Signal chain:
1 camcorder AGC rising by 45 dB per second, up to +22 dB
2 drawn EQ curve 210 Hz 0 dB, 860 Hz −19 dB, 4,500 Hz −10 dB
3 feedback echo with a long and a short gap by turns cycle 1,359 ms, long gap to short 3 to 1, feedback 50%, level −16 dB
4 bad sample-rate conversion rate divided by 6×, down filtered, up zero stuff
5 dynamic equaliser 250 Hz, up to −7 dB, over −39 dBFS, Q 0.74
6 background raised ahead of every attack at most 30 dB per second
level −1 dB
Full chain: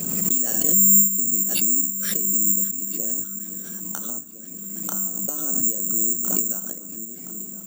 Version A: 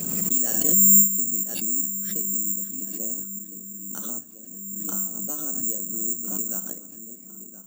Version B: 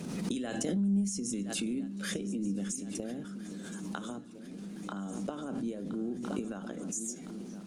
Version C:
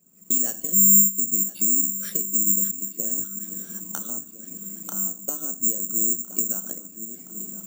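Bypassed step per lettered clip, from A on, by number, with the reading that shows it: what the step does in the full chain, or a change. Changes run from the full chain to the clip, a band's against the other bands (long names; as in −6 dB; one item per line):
1, change in crest factor +2.5 dB
4, 8 kHz band −19.5 dB
6, 2 kHz band −4.5 dB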